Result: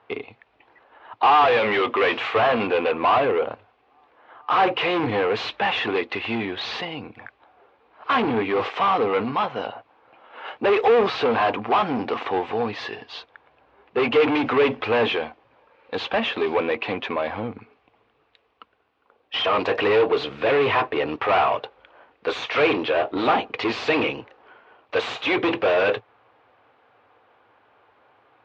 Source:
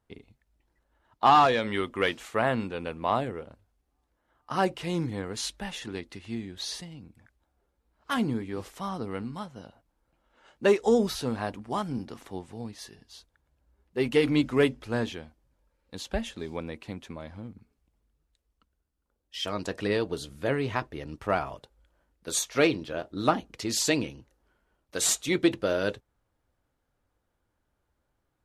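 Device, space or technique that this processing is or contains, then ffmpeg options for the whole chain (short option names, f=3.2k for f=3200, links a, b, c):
overdrive pedal into a guitar cabinet: -filter_complex "[0:a]asplit=2[a][b];[b]highpass=f=720:p=1,volume=35dB,asoftclip=type=tanh:threshold=-8.5dB[c];[a][c]amix=inputs=2:normalize=0,lowpass=f=6.8k:p=1,volume=-6dB,highpass=92,equalizer=f=110:t=q:w=4:g=6,equalizer=f=170:t=q:w=4:g=-8,equalizer=f=450:t=q:w=4:g=7,equalizer=f=760:t=q:w=4:g=7,equalizer=f=1.1k:t=q:w=4:g=6,equalizer=f=2.5k:t=q:w=4:g=5,lowpass=f=3.4k:w=0.5412,lowpass=f=3.4k:w=1.3066,volume=-7dB"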